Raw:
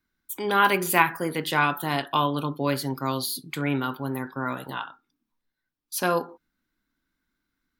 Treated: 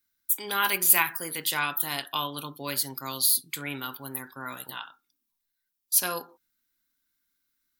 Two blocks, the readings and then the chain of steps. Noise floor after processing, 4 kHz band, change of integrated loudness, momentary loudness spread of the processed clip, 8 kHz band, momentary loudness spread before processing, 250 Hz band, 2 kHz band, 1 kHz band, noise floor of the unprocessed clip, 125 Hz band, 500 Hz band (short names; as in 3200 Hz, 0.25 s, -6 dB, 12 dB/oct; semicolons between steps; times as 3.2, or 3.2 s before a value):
-81 dBFS, +1.5 dB, 0.0 dB, 17 LU, +9.0 dB, 13 LU, -12.0 dB, -4.0 dB, -8.0 dB, -83 dBFS, -12.5 dB, -11.0 dB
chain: pre-emphasis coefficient 0.9; gain +7.5 dB